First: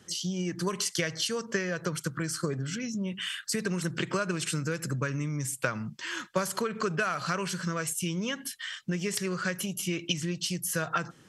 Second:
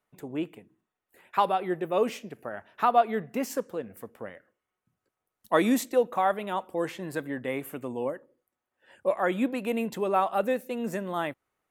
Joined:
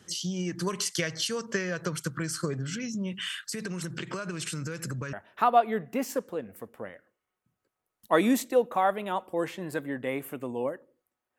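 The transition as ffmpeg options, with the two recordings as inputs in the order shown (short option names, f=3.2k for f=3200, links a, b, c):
-filter_complex "[0:a]asettb=1/sr,asplit=3[a][b][c];[a]atrim=end=3.354[d];[b]atrim=start=3.35:end=5.13,asetpts=PTS-STARTPTS,afade=t=in:d=0.004:c=qsin,afade=t=out:st=1.776:d=0.004:c=qsin,acompressor=threshold=-30dB:ratio=6:attack=3.2:release=140:knee=1:detection=peak[e];[c]atrim=start=5.126[f];[d][e]acrossfade=d=0.004:c1=hsin:c2=qsin[g];[g][f]acrossfade=d=0.004:c1=qsin:c2=hsin,apad=whole_dur=11.38,atrim=end=11.38,atrim=end=5.132[h];[1:a]atrim=start=2.538:end=8.79[i];[h][i]acrossfade=d=0.004:c1=hsin:c2=hsin"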